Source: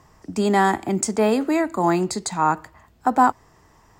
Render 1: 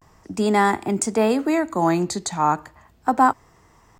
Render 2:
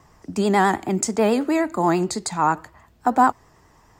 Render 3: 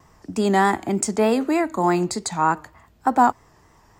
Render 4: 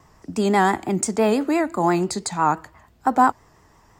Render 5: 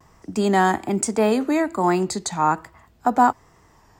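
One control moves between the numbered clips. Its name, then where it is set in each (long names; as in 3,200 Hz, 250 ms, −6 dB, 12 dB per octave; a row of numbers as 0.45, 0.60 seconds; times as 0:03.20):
pitch vibrato, speed: 0.34, 9.3, 3.3, 5.9, 1.2 Hertz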